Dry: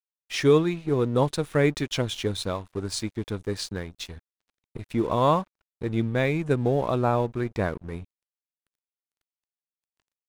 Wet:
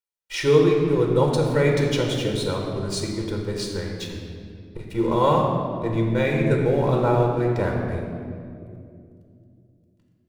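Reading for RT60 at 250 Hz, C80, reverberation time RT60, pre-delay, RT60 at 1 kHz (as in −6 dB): 3.8 s, 3.5 dB, 2.5 s, 4 ms, 2.0 s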